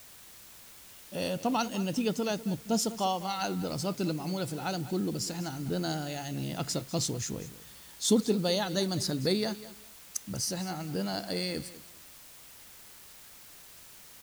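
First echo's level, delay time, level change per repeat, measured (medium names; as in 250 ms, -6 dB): -16.0 dB, 198 ms, -13.0 dB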